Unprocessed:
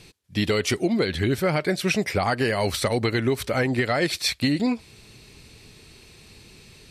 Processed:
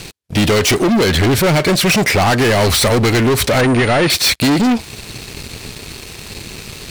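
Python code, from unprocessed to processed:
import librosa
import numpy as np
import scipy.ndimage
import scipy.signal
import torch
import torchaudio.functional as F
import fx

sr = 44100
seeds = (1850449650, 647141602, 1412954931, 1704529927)

y = fx.leveller(x, sr, passes=5)
y = fx.pwm(y, sr, carrier_hz=9100.0, at=(3.61, 4.1))
y = F.gain(torch.from_numpy(y), 2.0).numpy()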